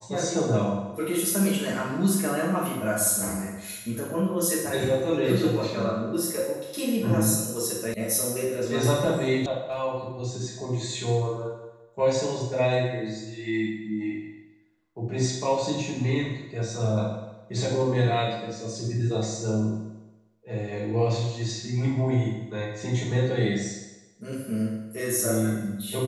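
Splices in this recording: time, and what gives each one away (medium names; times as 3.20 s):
7.94 s: sound stops dead
9.46 s: sound stops dead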